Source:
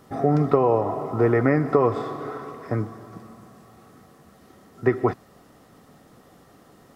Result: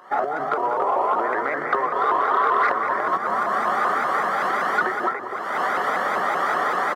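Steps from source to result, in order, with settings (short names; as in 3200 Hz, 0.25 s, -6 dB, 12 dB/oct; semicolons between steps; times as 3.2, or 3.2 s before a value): recorder AGC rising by 53 dB/s; shoebox room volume 2200 m³, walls furnished, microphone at 1.2 m; in parallel at -4 dB: short-mantissa float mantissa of 2-bit; on the sum: polynomial smoothing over 41 samples; compressor 3:1, threshold -20 dBFS, peak gain reduction 10.5 dB; HPF 1100 Hz 12 dB/oct; on a send: loudspeakers at several distances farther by 67 m -9 dB, 98 m -6 dB; on the sum: soft clip -17 dBFS, distortion -27 dB; shaped vibrato saw up 5.2 Hz, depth 160 cents; gain +9 dB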